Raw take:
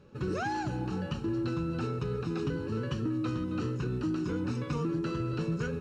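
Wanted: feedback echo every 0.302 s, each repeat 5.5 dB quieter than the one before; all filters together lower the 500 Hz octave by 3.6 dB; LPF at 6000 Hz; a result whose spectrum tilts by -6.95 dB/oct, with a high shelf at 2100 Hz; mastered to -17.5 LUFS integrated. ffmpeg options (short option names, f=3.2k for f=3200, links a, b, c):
-af "lowpass=6k,equalizer=f=500:t=o:g=-5,highshelf=f=2.1k:g=-5,aecho=1:1:302|604|906|1208|1510|1812|2114:0.531|0.281|0.149|0.079|0.0419|0.0222|0.0118,volume=15dB"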